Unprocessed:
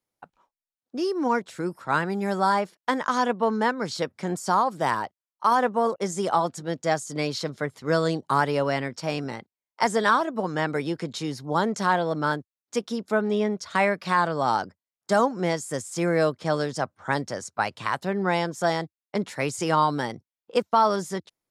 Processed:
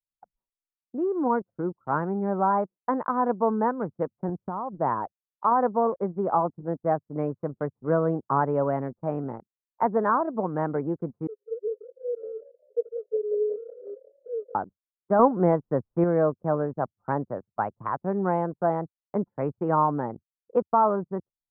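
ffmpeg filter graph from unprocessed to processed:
ffmpeg -i in.wav -filter_complex "[0:a]asettb=1/sr,asplit=3[link_01][link_02][link_03];[link_01]atrim=end=4.294[link_04];[link_02]atrim=start=4.29:end=4.75,asetpts=PTS-STARTPTS,afade=type=in:duration=0.004:curve=qsin,afade=type=out:start_time=0.456:duration=0.004:curve=qsin,lowshelf=frequency=210:gain=10,acompressor=threshold=-29dB:ratio=3:attack=3.2:release=140:knee=1:detection=peak[link_05];[link_03]atrim=start=4.746[link_06];[link_04][link_05]acrossfade=duration=0.004:curve1=hsin:curve2=qsin[link_07];[link_07][link_06]acrossfade=duration=0.004:curve1=qsin:curve2=hsin,asettb=1/sr,asplit=3[link_08][link_09][link_10];[link_08]atrim=end=11.274[link_11];[link_09]atrim=start=11.27:end=14.55,asetpts=PTS-STARTPTS,afade=type=in:duration=0.004:curve=qsin,afade=type=out:start_time=3.276:duration=0.004:curve=qsin,aeval=exprs='val(0)+0.5*0.0422*sgn(val(0))':channel_layout=same,asuperpass=centerf=450:order=8:qfactor=5.7,asplit=7[link_12][link_13][link_14][link_15][link_16][link_17][link_18];[link_13]adelay=182,afreqshift=34,volume=-14.5dB[link_19];[link_14]adelay=364,afreqshift=68,volume=-18.8dB[link_20];[link_15]adelay=546,afreqshift=102,volume=-23.1dB[link_21];[link_16]adelay=728,afreqshift=136,volume=-27.4dB[link_22];[link_17]adelay=910,afreqshift=170,volume=-31.7dB[link_23];[link_18]adelay=1092,afreqshift=204,volume=-36dB[link_24];[link_12][link_19][link_20][link_21][link_22][link_23][link_24]amix=inputs=7:normalize=0,atrim=end_sample=144648[link_25];[link_10]atrim=start=14.546[link_26];[link_11][link_25]acrossfade=duration=0.004:curve1=hsin:curve2=qsin[link_27];[link_27][link_26]acrossfade=duration=0.004:curve1=qsin:curve2=hsin,asettb=1/sr,asplit=3[link_28][link_29][link_30];[link_28]atrim=end=15.194[link_31];[link_29]atrim=start=15.19:end=16.04,asetpts=PTS-STARTPTS,afade=type=in:duration=0.004:curve=qsin,afade=type=out:start_time=0.846:duration=0.004:curve=qsin,acontrast=23,acrusher=bits=7:mix=0:aa=0.5[link_32];[link_30]atrim=start=16.036[link_33];[link_31][link_32]acrossfade=duration=0.004:curve1=hsin:curve2=qsin[link_34];[link_34][link_33]acrossfade=duration=0.004:curve1=qsin:curve2=hsin,lowpass=frequency=1200:width=0.5412,lowpass=frequency=1200:width=1.3066,anlmdn=3.98" out.wav

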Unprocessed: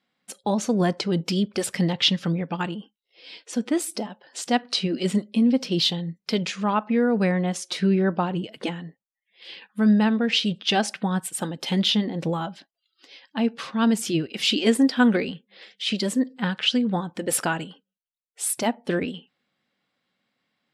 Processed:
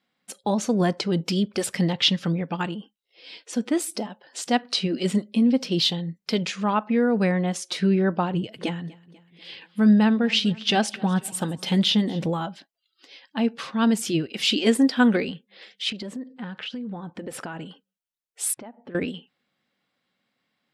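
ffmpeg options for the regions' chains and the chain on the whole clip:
ffmpeg -i in.wav -filter_complex "[0:a]asettb=1/sr,asplit=3[link_01][link_02][link_03];[link_01]atrim=end=8.344[link_04];[link_02]atrim=start=8.34:end=12.26,asetpts=PTS-STARTPTS,afade=type=in:duration=0.004:curve=qsin,afade=type=out:start_time=3.916:duration=0.004:curve=qsin,deesser=0.35,equalizer=frequency=110:width_type=o:width=1:gain=7.5,aecho=1:1:245|490|735|980:0.0794|0.0469|0.0277|0.0163,atrim=end_sample=172872[link_05];[link_03]atrim=start=12.256[link_06];[link_04][link_05]acrossfade=duration=0.004:curve1=hsin:curve2=qsin[link_07];[link_07][link_06]acrossfade=duration=0.004:curve1=qsin:curve2=hsin,asettb=1/sr,asplit=3[link_08][link_09][link_10];[link_08]atrim=end=15.904[link_11];[link_09]atrim=start=15.9:end=17.66,asetpts=PTS-STARTPTS,afade=type=in:duration=0.004:curve=qsin,afade=type=out:start_time=1.756:duration=0.004:curve=qsin,lowpass=frequency=1900:poles=1,acompressor=threshold=-30dB:ratio=8:attack=3.2:release=140:knee=1:detection=peak[link_12];[link_10]atrim=start=17.656[link_13];[link_11][link_12]acrossfade=duration=0.004:curve1=hsin:curve2=qsin[link_14];[link_14][link_13]acrossfade=duration=0.004:curve1=qsin:curve2=hsin,asettb=1/sr,asplit=3[link_15][link_16][link_17];[link_15]atrim=end=18.544[link_18];[link_16]atrim=start=18.54:end=18.95,asetpts=PTS-STARTPTS,afade=type=in:duration=0.004:curve=qsin,afade=type=out:start_time=0.406:duration=0.004:curve=qsin,lowpass=1700,acompressor=threshold=-37dB:ratio=10:attack=3.2:release=140:knee=1:detection=peak[link_19];[link_17]atrim=start=18.946[link_20];[link_18][link_19]acrossfade=duration=0.004:curve1=hsin:curve2=qsin[link_21];[link_21][link_20]acrossfade=duration=0.004:curve1=qsin:curve2=hsin" out.wav

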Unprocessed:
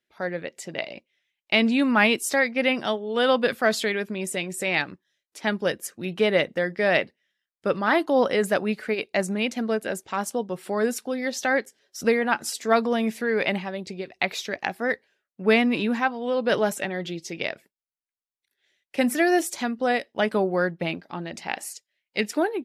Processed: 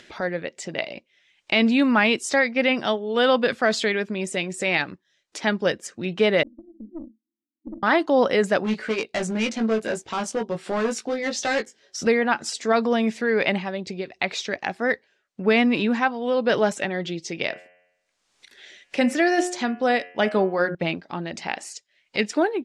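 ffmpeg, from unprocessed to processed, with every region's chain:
ffmpeg -i in.wav -filter_complex "[0:a]asettb=1/sr,asplit=3[link_01][link_02][link_03];[link_01]atrim=end=6.434[link_04];[link_02]atrim=start=6.43:end=7.83,asetpts=PTS-STARTPTS,afade=type=in:duration=0.004:curve=qsin,afade=type=out:start_time=1.396:duration=0.004:curve=qsin,asuperpass=centerf=270:order=20:qfactor=2.3,aeval=exprs='(tanh(50.1*val(0)+0.5)-tanh(0.5))/50.1':channel_layout=same[link_05];[link_03]atrim=start=7.826[link_06];[link_04][link_05]acrossfade=duration=0.004:curve1=hsin:curve2=qsin[link_07];[link_07][link_06]acrossfade=duration=0.004:curve1=qsin:curve2=hsin,asettb=1/sr,asplit=3[link_08][link_09][link_10];[link_08]atrim=end=8.644[link_11];[link_09]atrim=start=8.64:end=12.07,asetpts=PTS-STARTPTS,afade=type=in:duration=0.004:curve=qsin,afade=type=out:start_time=3.426:duration=0.004:curve=qsin,asoftclip=type=hard:threshold=-23.5dB,asplit=2[link_12][link_13];[link_13]adelay=18,volume=-4.5dB[link_14];[link_12][link_14]amix=inputs=2:normalize=0,atrim=end_sample=151263[link_15];[link_10]atrim=start=12.066[link_16];[link_11][link_15]acrossfade=duration=0.004:curve1=hsin:curve2=qsin[link_17];[link_17][link_16]acrossfade=duration=0.004:curve1=qsin:curve2=hsin,asettb=1/sr,asplit=3[link_18][link_19][link_20];[link_18]atrim=end=17.454[link_21];[link_19]atrim=start=17.45:end=20.75,asetpts=PTS-STARTPTS,afade=type=in:duration=0.004:curve=qsin,afade=type=out:start_time=3.296:duration=0.004:curve=qsin,equalizer=frequency=100:width=4.2:gain=-14,bandreject=frequency=89.64:width_type=h:width=4,bandreject=frequency=179.28:width_type=h:width=4,bandreject=frequency=268.92:width_type=h:width=4,bandreject=frequency=358.56:width_type=h:width=4,bandreject=frequency=448.2:width_type=h:width=4,bandreject=frequency=537.84:width_type=h:width=4,bandreject=frequency=627.48:width_type=h:width=4,bandreject=frequency=717.12:width_type=h:width=4,bandreject=frequency=806.76:width_type=h:width=4,bandreject=frequency=896.4:width_type=h:width=4,bandreject=frequency=986.04:width_type=h:width=4,bandreject=frequency=1075.68:width_type=h:width=4,bandreject=frequency=1165.32:width_type=h:width=4,bandreject=frequency=1254.96:width_type=h:width=4,bandreject=frequency=1344.6:width_type=h:width=4,bandreject=frequency=1434.24:width_type=h:width=4,bandreject=frequency=1523.88:width_type=h:width=4,bandreject=frequency=1613.52:width_type=h:width=4,bandreject=frequency=1703.16:width_type=h:width=4,bandreject=frequency=1792.8:width_type=h:width=4,bandreject=frequency=1882.44:width_type=h:width=4,bandreject=frequency=1972.08:width_type=h:width=4,bandreject=frequency=2061.72:width_type=h:width=4,bandreject=frequency=2151.36:width_type=h:width=4,bandreject=frequency=2241:width_type=h:width=4,bandreject=frequency=2330.64:width_type=h:width=4,bandreject=frequency=2420.28:width_type=h:width=4,bandreject=frequency=2509.92:width_type=h:width=4,bandreject=frequency=2599.56:width_type=h:width=4,bandreject=frequency=2689.2:width_type=h:width=4,bandreject=frequency=2778.84:width_type=h:width=4,bandreject=frequency=2868.48:width_type=h:width=4,bandreject=frequency=2958.12:width_type=h:width=4,bandreject=frequency=3047.76:width_type=h:width=4,bandreject=frequency=3137.4:width_type=h:width=4[link_22];[link_20]atrim=start=20.746[link_23];[link_21][link_22]acrossfade=duration=0.004:curve1=hsin:curve2=qsin[link_24];[link_24][link_23]acrossfade=duration=0.004:curve1=qsin:curve2=hsin,lowpass=frequency=7800:width=0.5412,lowpass=frequency=7800:width=1.3066,acompressor=mode=upward:threshold=-31dB:ratio=2.5,alimiter=level_in=10.5dB:limit=-1dB:release=50:level=0:latency=1,volume=-8dB" out.wav

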